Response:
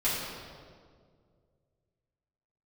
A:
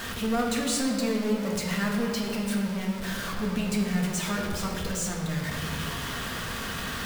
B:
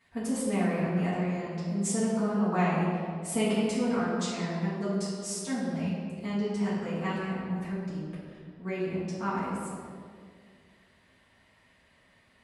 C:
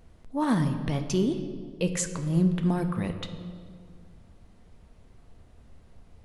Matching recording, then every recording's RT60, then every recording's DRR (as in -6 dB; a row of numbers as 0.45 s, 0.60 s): B; 2.0 s, 2.0 s, 2.0 s; -2.0 dB, -11.0 dB, 6.5 dB